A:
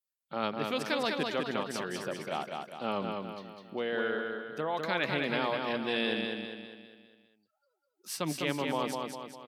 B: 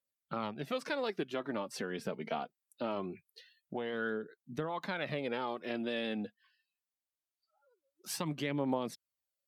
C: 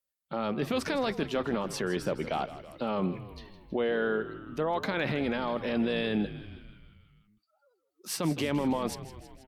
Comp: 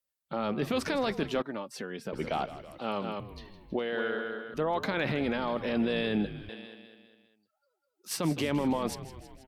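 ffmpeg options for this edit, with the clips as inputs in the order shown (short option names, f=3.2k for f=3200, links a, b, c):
-filter_complex "[0:a]asplit=3[a][b][c];[2:a]asplit=5[d][e][f][g][h];[d]atrim=end=1.422[i];[1:a]atrim=start=1.418:end=2.132[j];[e]atrim=start=2.128:end=2.792[k];[a]atrim=start=2.788:end=3.202[l];[f]atrim=start=3.198:end=3.792[m];[b]atrim=start=3.788:end=4.542[n];[g]atrim=start=4.538:end=6.492[o];[c]atrim=start=6.488:end=8.112[p];[h]atrim=start=8.108[q];[i][j]acrossfade=d=0.004:c1=hsin:c2=hsin[r];[r][k]acrossfade=d=0.004:c1=hsin:c2=hsin[s];[s][l]acrossfade=d=0.004:c1=hsin:c2=hsin[t];[t][m]acrossfade=d=0.004:c1=hsin:c2=hsin[u];[u][n]acrossfade=d=0.004:c1=hsin:c2=hsin[v];[v][o]acrossfade=d=0.004:c1=hsin:c2=hsin[w];[w][p]acrossfade=d=0.004:c1=hsin:c2=hsin[x];[x][q]acrossfade=d=0.004:c1=hsin:c2=hsin"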